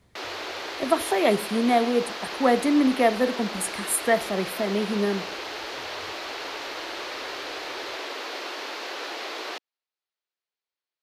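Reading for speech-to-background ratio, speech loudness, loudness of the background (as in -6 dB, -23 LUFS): 9.0 dB, -24.0 LUFS, -33.0 LUFS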